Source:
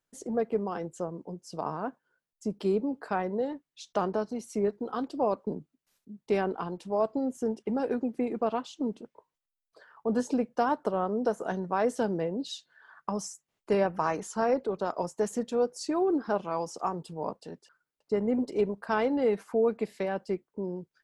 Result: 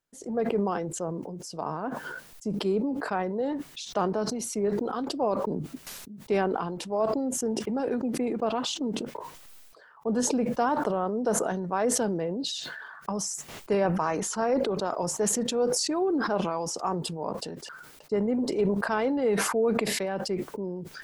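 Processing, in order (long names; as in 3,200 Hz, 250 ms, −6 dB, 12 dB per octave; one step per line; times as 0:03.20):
level that may fall only so fast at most 29 dB per second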